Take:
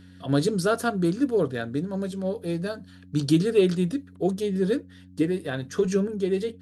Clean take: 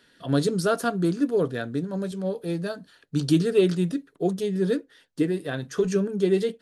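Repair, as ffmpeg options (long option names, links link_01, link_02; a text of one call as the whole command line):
ffmpeg -i in.wav -af "bandreject=frequency=91.7:width_type=h:width=4,bandreject=frequency=183.4:width_type=h:width=4,bandreject=frequency=275.1:width_type=h:width=4,asetnsamples=nb_out_samples=441:pad=0,asendcmd='6.14 volume volume 3.5dB',volume=0dB" out.wav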